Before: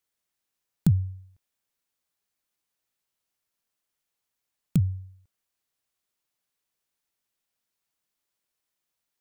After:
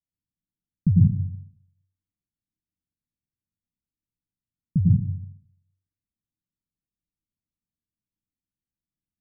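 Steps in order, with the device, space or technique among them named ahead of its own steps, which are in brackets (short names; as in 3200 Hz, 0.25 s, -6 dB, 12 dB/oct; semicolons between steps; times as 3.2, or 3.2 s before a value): next room (LPF 260 Hz 24 dB/oct; reverb RT60 0.65 s, pre-delay 92 ms, DRR -4.5 dB)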